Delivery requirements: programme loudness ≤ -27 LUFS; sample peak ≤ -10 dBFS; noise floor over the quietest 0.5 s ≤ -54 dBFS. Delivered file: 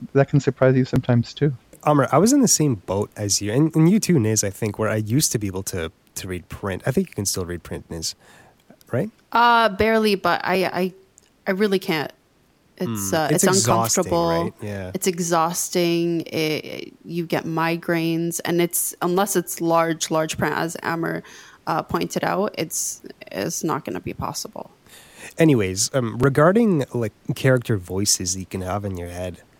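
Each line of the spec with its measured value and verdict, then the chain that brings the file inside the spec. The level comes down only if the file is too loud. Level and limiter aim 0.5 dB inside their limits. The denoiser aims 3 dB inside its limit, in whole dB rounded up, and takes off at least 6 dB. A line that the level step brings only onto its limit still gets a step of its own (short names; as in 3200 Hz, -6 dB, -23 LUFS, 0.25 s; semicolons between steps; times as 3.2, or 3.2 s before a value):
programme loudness -21.0 LUFS: fail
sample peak -4.5 dBFS: fail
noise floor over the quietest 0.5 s -59 dBFS: OK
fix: gain -6.5 dB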